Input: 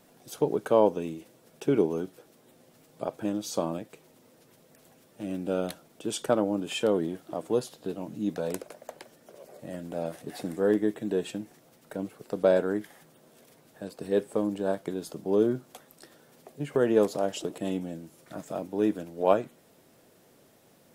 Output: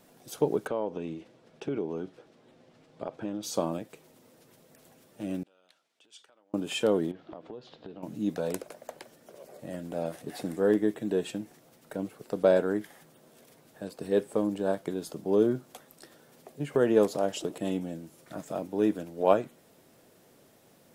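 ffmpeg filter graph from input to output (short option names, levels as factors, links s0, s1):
-filter_complex "[0:a]asettb=1/sr,asplit=3[s0][s1][s2];[s0]atrim=end=0.674[s3];[s1]atrim=start=0.67:end=3.43,asetpts=PTS-STARTPTS,afade=t=in:d=0.004:c=qsin,afade=t=out:st=2.756:d=0.004:c=qsin,lowpass=4300,acompressor=threshold=0.0282:ratio=2.5:attack=3.2:release=140:knee=1:detection=peak[s4];[s2]atrim=start=3.426[s5];[s3][s4]acrossfade=d=0.004:c1=hsin:c2=qsin[s6];[s6][s5]acrossfade=d=0.004:c1=qsin:c2=hsin,asettb=1/sr,asplit=3[s7][s8][s9];[s7]atrim=end=5.434[s10];[s8]atrim=start=5.43:end=6.54,asetpts=PTS-STARTPTS,afade=t=in:d=0.004:c=qsin,afade=t=out:st=1.106:d=0.004:c=qsin,lowpass=3200,acompressor=threshold=0.0112:ratio=6:attack=3.2:release=140:knee=1:detection=peak,aderivative[s11];[s9]atrim=start=6.536[s12];[s10][s11]acrossfade=d=0.004:c1=hsin:c2=qsin[s13];[s13][s12]acrossfade=d=0.004:c1=qsin:c2=hsin,asettb=1/sr,asplit=3[s14][s15][s16];[s14]atrim=end=7.114[s17];[s15]atrim=start=7.11:end=8.03,asetpts=PTS-STARTPTS,afade=t=in:d=0.004:c=qsin,afade=t=out:st=0.916:d=0.004:c=qsin,lowpass=f=4100:w=0.5412,lowpass=f=4100:w=1.3066,acompressor=threshold=0.0112:ratio=8:attack=3.2:release=140:knee=1:detection=peak[s18];[s16]atrim=start=8.026[s19];[s17][s18]acrossfade=d=0.004:c1=hsin:c2=qsin[s20];[s20][s19]acrossfade=d=0.004:c1=qsin:c2=hsin"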